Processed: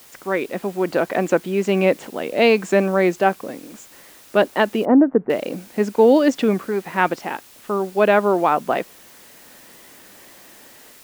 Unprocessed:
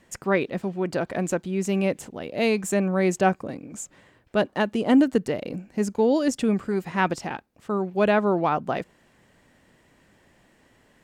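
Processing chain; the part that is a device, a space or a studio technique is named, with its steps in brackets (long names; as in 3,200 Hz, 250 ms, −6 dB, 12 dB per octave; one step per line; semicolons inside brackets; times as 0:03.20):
dictaphone (band-pass filter 270–3,700 Hz; automatic gain control gain up to 12 dB; tape wow and flutter; white noise bed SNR 27 dB)
0:04.85–0:05.30: Bessel low-pass filter 970 Hz, order 6
level −1 dB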